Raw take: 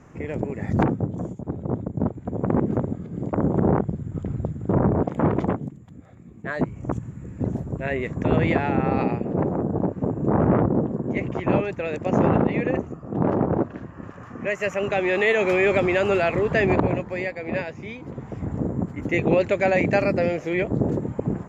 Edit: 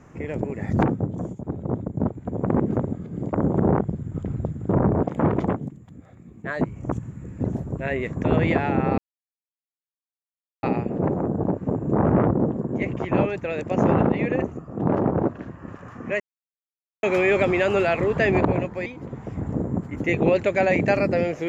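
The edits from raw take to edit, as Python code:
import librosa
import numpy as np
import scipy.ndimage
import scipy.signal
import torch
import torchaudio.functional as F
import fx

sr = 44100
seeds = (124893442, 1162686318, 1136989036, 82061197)

y = fx.edit(x, sr, fx.insert_silence(at_s=8.98, length_s=1.65),
    fx.silence(start_s=14.55, length_s=0.83),
    fx.cut(start_s=17.21, length_s=0.7), tone=tone)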